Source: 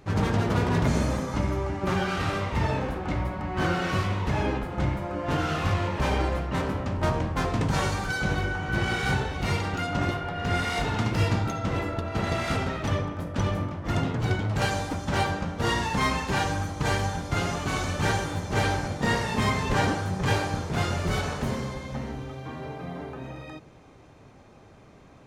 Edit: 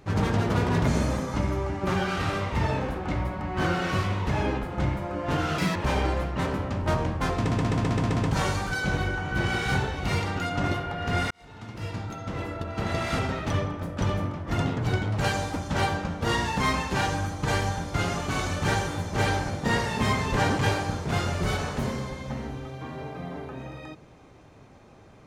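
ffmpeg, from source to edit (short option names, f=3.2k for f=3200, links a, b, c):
-filter_complex "[0:a]asplit=11[a][b][c][d][e][f][g][h][i][j][k];[a]atrim=end=5.584[l];[b]atrim=start=5.58:end=5.91,asetpts=PTS-STARTPTS,asetrate=82467,aresample=44100,atrim=end_sample=7782,asetpts=PTS-STARTPTS[m];[c]atrim=start=5.906:end=7.672[n];[d]atrim=start=7.538:end=7.672[o];[e]atrim=start=7.538:end=7.672[p];[f]atrim=start=7.538:end=7.672[q];[g]atrim=start=7.538:end=7.672[r];[h]atrim=start=7.538:end=7.672[s];[i]atrim=start=7.538:end=10.68,asetpts=PTS-STARTPTS,afade=t=out:st=3.138:d=0.004:c=hsin[t];[j]atrim=start=10.68:end=19.962,asetpts=PTS-STARTPTS,afade=t=in:d=1.82[u];[k]atrim=start=20.228[v];[l][m]acrossfade=d=0.004:c1=hsin:c2=hsin[w];[w][n]acrossfade=d=0.004:c1=hsin:c2=hsin[x];[x][o]acrossfade=d=0.004:c1=hsin:c2=hsin[y];[y][p]acrossfade=d=0.004:c1=hsin:c2=hsin[z];[z][q]acrossfade=d=0.004:c1=hsin:c2=hsin[aa];[aa][r]acrossfade=d=0.004:c1=hsin:c2=hsin[ab];[ab][s]acrossfade=d=0.004:c1=hsin:c2=hsin[ac];[t][u]concat=n=2:v=0:a=1[ad];[ac][ad]acrossfade=d=0.004:c1=hsin:c2=hsin[ae];[ae][v]acrossfade=d=0.004:c1=hsin:c2=hsin"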